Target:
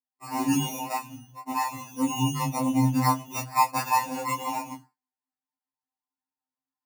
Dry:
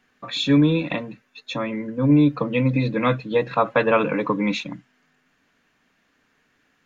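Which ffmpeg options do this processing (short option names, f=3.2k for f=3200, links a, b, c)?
-filter_complex "[0:a]bandreject=f=1.5k:w=5.9,asettb=1/sr,asplit=3[a][b][c];[a]atrim=end=0.864[d];[b]atrim=start=0.86:end=3.22,asetpts=PTS-STARTPTS,afade=t=in:d=0.004:c=qsin,afade=t=out:st=2.356:d=0.004:c=qsin,acrossover=split=250[e][f];[e]adelay=190[g];[g][f]amix=inputs=2:normalize=0,atrim=end_sample=104076[h];[c]atrim=start=3.216[i];[d][h]acrossfade=d=0.004:c1=hsin:c2=qsin[j];[j][i]acrossfade=d=0.004:c1=qsin:c2=hsin,acrusher=samples=14:mix=1:aa=0.000001,highshelf=f=4.7k:g=7,dynaudnorm=f=140:g=3:m=5dB,superequalizer=6b=2.82:7b=0.316:9b=3.98:13b=0.251,agate=range=-33dB:threshold=-30dB:ratio=3:detection=peak,flanger=delay=17.5:depth=4.9:speed=1.7,highpass=120,afftfilt=real='re*2.45*eq(mod(b,6),0)':imag='im*2.45*eq(mod(b,6),0)':win_size=2048:overlap=0.75,volume=-4.5dB"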